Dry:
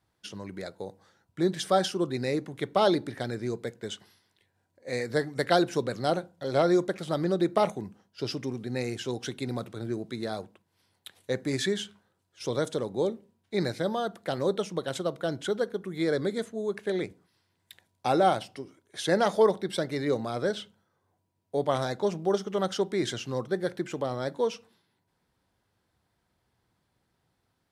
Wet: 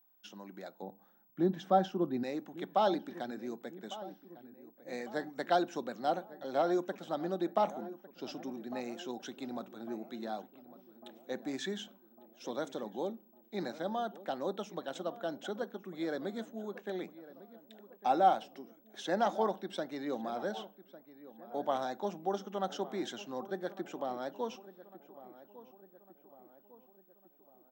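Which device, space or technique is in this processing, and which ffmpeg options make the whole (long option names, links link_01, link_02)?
old television with a line whistle: -filter_complex "[0:a]asettb=1/sr,asplit=3[link_01][link_02][link_03];[link_01]atrim=end=0.824[link_04];[link_02]atrim=start=0.82:end=2.23,asetpts=PTS-STARTPTS,afade=type=in:duration=0.004:curve=qsin,afade=type=out:start_time=1.406:duration=0.004:curve=qsin,aemphasis=mode=reproduction:type=riaa[link_05];[link_03]atrim=start=2.226[link_06];[link_04][link_05]acrossfade=duration=0.004:curve1=hsin:curve2=qsin[link_07];[link_07][link_06]acrossfade=duration=0.004:curve1=qsin:curve2=hsin,highpass=frequency=210:width=0.5412,highpass=frequency=210:width=1.3066,equalizer=frequency=220:width_type=q:width=4:gain=4,equalizer=frequency=440:width_type=q:width=4:gain=-7,equalizer=frequency=780:width_type=q:width=4:gain=7,equalizer=frequency=2100:width_type=q:width=4:gain=-6,equalizer=frequency=4600:width_type=q:width=4:gain=-9,lowpass=frequency=6800:width=0.5412,lowpass=frequency=6800:width=1.3066,asplit=2[link_08][link_09];[link_09]adelay=1152,lowpass=frequency=1600:poles=1,volume=-16dB,asplit=2[link_10][link_11];[link_11]adelay=1152,lowpass=frequency=1600:poles=1,volume=0.55,asplit=2[link_12][link_13];[link_13]adelay=1152,lowpass=frequency=1600:poles=1,volume=0.55,asplit=2[link_14][link_15];[link_15]adelay=1152,lowpass=frequency=1600:poles=1,volume=0.55,asplit=2[link_16][link_17];[link_17]adelay=1152,lowpass=frequency=1600:poles=1,volume=0.55[link_18];[link_08][link_10][link_12][link_14][link_16][link_18]amix=inputs=6:normalize=0,aeval=exprs='val(0)+0.00112*sin(2*PI*15734*n/s)':channel_layout=same,volume=-7dB"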